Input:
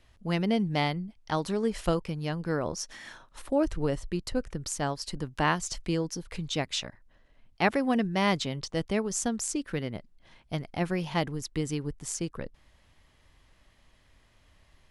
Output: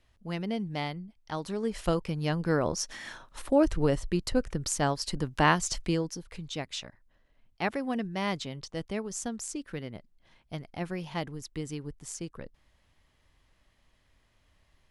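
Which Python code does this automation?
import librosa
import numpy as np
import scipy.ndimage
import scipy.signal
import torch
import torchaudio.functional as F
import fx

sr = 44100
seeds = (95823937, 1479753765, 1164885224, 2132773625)

y = fx.gain(x, sr, db=fx.line((1.33, -6.0), (2.31, 3.0), (5.79, 3.0), (6.31, -5.5)))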